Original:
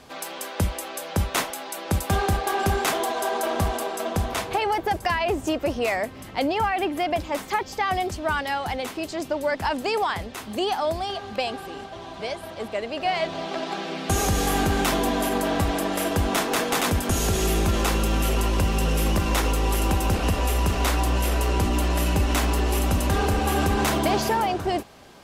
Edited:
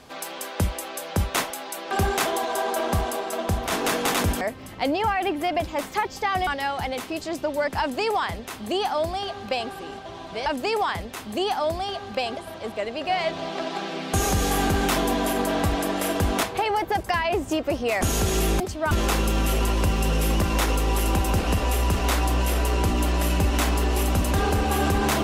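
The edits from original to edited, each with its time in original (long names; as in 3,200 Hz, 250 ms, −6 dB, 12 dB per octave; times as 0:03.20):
0:01.91–0:02.58: remove
0:04.39–0:05.97: swap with 0:16.39–0:17.08
0:08.03–0:08.34: move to 0:17.67
0:09.67–0:11.58: duplicate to 0:12.33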